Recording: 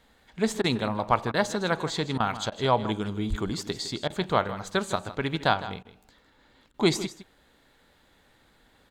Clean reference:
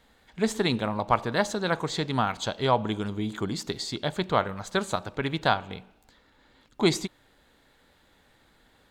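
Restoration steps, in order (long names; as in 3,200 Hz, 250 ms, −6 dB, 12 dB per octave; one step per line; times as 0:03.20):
0:03.29–0:03.41: high-pass filter 140 Hz 24 dB per octave
repair the gap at 0:00.62/0:01.32/0:02.18/0:02.50/0:04.08/0:05.83/0:06.72, 19 ms
echo removal 158 ms −14 dB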